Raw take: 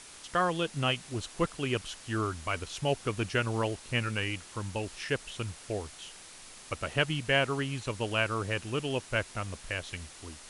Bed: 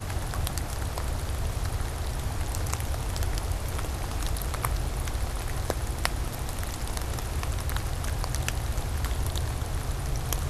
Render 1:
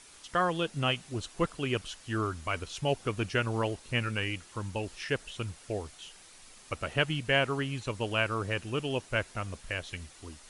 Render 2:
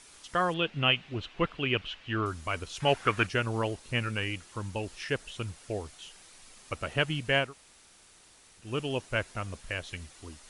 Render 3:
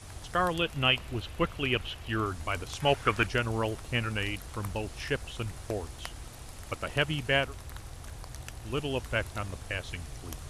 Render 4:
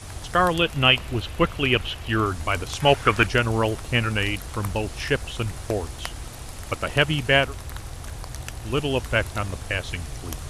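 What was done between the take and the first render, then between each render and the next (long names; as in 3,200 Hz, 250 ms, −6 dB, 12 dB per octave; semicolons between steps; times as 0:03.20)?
broadband denoise 6 dB, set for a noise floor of −50 dBFS
0:00.54–0:02.26: low-pass with resonance 2,800 Hz, resonance Q 2.2; 0:02.80–0:03.27: parametric band 1,600 Hz +14.5 dB 1.7 octaves; 0:07.46–0:08.65: fill with room tone, crossfade 0.16 s
mix in bed −13.5 dB
level +8 dB; brickwall limiter −3 dBFS, peak gain reduction 1 dB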